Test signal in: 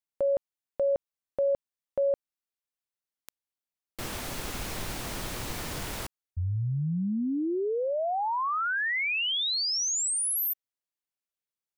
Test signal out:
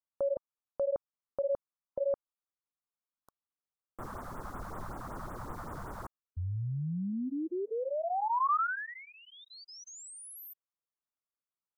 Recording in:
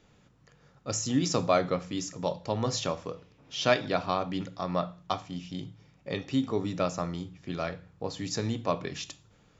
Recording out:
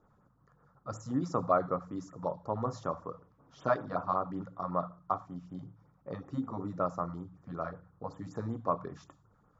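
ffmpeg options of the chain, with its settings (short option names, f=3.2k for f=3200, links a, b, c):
-af "highshelf=f=1.8k:t=q:w=3:g=-13.5,afftfilt=real='re*(1-between(b*sr/1024,310*pow(5400/310,0.5+0.5*sin(2*PI*5.3*pts/sr))/1.41,310*pow(5400/310,0.5+0.5*sin(2*PI*5.3*pts/sr))*1.41))':imag='im*(1-between(b*sr/1024,310*pow(5400/310,0.5+0.5*sin(2*PI*5.3*pts/sr))/1.41,310*pow(5400/310,0.5+0.5*sin(2*PI*5.3*pts/sr))*1.41))':win_size=1024:overlap=0.75,volume=-5.5dB"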